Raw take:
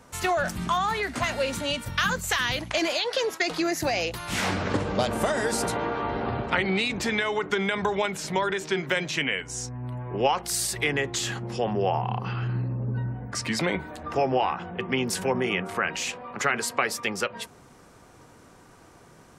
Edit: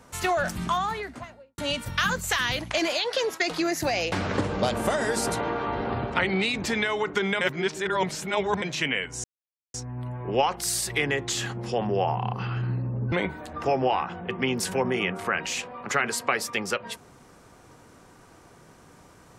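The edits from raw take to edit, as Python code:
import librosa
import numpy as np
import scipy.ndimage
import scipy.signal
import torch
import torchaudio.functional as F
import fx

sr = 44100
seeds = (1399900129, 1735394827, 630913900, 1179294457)

y = fx.studio_fade_out(x, sr, start_s=0.62, length_s=0.96)
y = fx.edit(y, sr, fx.cut(start_s=4.12, length_s=0.36),
    fx.reverse_span(start_s=7.77, length_s=1.21),
    fx.insert_silence(at_s=9.6, length_s=0.5),
    fx.cut(start_s=12.98, length_s=0.64), tone=tone)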